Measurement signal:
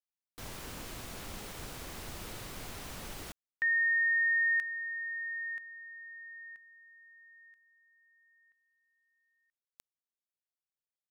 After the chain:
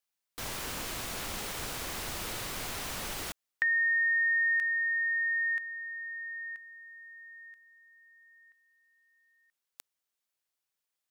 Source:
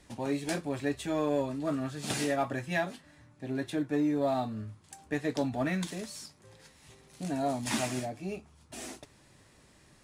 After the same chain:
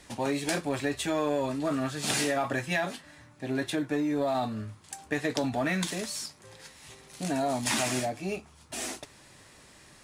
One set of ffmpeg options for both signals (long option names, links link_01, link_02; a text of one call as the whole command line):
ffmpeg -i in.wav -af "lowshelf=frequency=470:gain=-7,acompressor=threshold=-36dB:ratio=6:attack=13:release=41:knee=1:detection=peak,volume=8.5dB" out.wav